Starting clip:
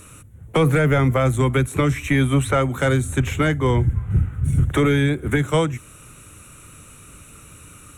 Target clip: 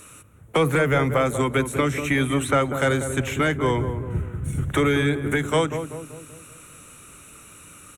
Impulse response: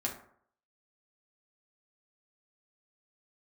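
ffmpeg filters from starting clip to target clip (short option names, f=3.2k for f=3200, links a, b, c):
-filter_complex "[0:a]lowshelf=f=180:g=-11.5,asplit=2[a][b];[b]adelay=192,lowpass=f=850:p=1,volume=-7dB,asplit=2[c][d];[d]adelay=192,lowpass=f=850:p=1,volume=0.55,asplit=2[e][f];[f]adelay=192,lowpass=f=850:p=1,volume=0.55,asplit=2[g][h];[h]adelay=192,lowpass=f=850:p=1,volume=0.55,asplit=2[i][j];[j]adelay=192,lowpass=f=850:p=1,volume=0.55,asplit=2[k][l];[l]adelay=192,lowpass=f=850:p=1,volume=0.55,asplit=2[m][n];[n]adelay=192,lowpass=f=850:p=1,volume=0.55[o];[c][e][g][i][k][m][o]amix=inputs=7:normalize=0[p];[a][p]amix=inputs=2:normalize=0"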